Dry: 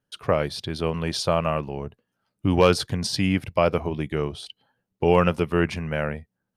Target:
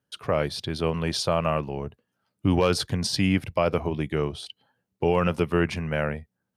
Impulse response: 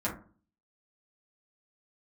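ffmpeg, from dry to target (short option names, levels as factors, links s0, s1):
-af "highpass=f=48:w=0.5412,highpass=f=48:w=1.3066,alimiter=limit=0.299:level=0:latency=1:release=61"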